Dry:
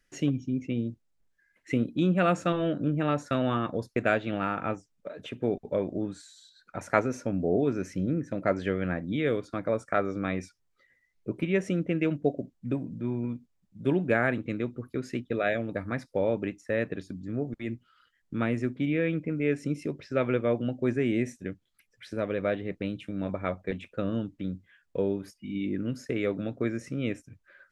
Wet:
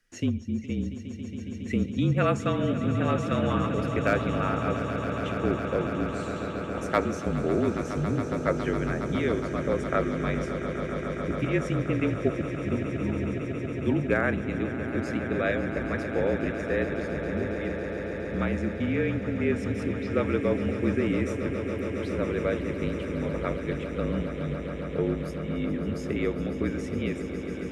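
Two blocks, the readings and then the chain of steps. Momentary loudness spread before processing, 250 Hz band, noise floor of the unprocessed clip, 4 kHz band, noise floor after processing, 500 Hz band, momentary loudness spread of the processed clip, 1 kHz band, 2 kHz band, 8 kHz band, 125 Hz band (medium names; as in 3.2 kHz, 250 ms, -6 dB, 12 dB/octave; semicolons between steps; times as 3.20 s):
10 LU, +2.0 dB, -73 dBFS, +2.0 dB, -35 dBFS, +1.5 dB, 6 LU, +2.0 dB, +2.0 dB, no reading, +4.0 dB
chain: overload inside the chain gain 12.5 dB; echo with a slow build-up 138 ms, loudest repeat 8, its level -13 dB; frequency shift -38 Hz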